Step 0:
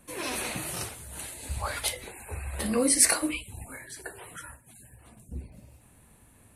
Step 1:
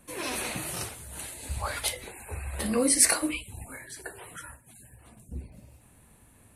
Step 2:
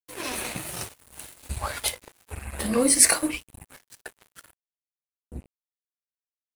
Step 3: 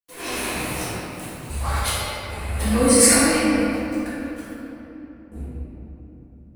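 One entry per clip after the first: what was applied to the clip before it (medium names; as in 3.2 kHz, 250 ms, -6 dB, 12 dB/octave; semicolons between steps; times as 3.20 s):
no audible change
crossover distortion -39 dBFS; trim +4.5 dB
simulated room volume 200 m³, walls hard, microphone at 1.8 m; trim -4.5 dB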